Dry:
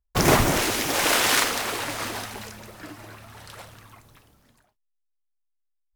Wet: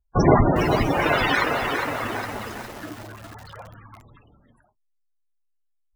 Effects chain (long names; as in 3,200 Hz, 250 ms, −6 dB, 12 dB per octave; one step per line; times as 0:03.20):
spectral peaks only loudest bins 32
feedback echo at a low word length 409 ms, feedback 55%, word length 7 bits, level −5.5 dB
level +4.5 dB